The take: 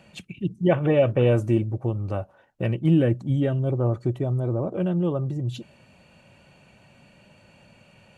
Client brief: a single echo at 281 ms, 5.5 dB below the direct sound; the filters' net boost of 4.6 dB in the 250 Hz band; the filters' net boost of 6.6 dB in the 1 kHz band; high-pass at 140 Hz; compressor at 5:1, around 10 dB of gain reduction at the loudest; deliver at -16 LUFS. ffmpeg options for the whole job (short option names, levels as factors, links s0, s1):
-af "highpass=140,equalizer=f=250:t=o:g=7,equalizer=f=1000:t=o:g=9,acompressor=threshold=0.0794:ratio=5,aecho=1:1:281:0.531,volume=3.35"